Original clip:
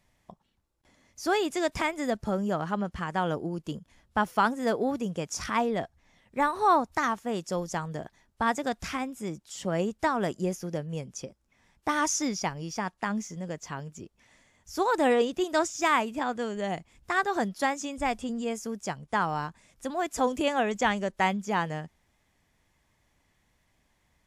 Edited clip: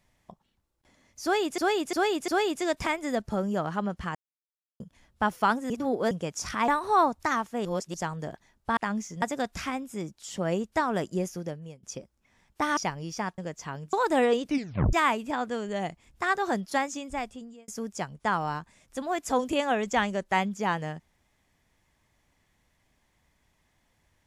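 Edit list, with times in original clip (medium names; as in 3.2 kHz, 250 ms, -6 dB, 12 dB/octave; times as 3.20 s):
1.23–1.58 s: loop, 4 plays
3.10–3.75 s: mute
4.65–5.06 s: reverse
5.63–6.40 s: delete
7.37–7.66 s: reverse
10.63–11.10 s: fade out, to -22.5 dB
12.04–12.36 s: delete
12.97–13.42 s: move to 8.49 s
13.97–14.81 s: delete
15.32 s: tape stop 0.49 s
17.75–18.56 s: fade out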